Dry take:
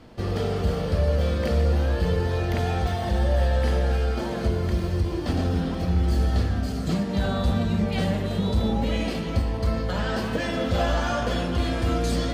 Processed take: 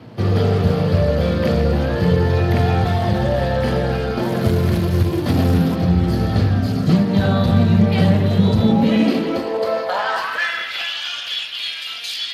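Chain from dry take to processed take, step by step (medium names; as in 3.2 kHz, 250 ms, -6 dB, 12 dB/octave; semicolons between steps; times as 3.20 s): 4.23–5.76 s: short-mantissa float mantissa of 2-bit; high-pass sweep 110 Hz -> 2.9 kHz, 8.52–10.98 s; trim +7 dB; Speex 28 kbps 32 kHz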